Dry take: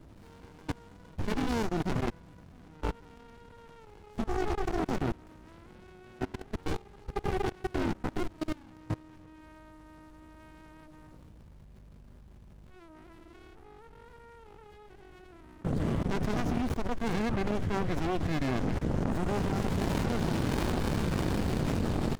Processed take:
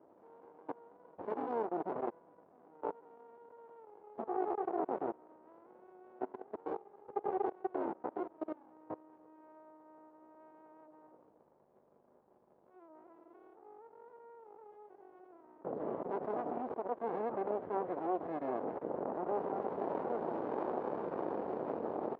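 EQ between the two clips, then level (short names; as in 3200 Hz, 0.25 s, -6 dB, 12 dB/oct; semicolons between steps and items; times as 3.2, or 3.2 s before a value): Butterworth band-pass 620 Hz, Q 1; 0.0 dB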